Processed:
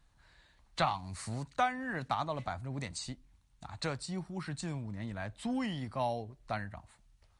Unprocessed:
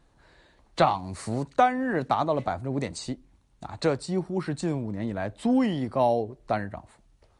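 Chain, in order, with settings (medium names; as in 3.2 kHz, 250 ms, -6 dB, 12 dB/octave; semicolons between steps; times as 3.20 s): peaking EQ 400 Hz -13.5 dB 1.9 oct; trim -3 dB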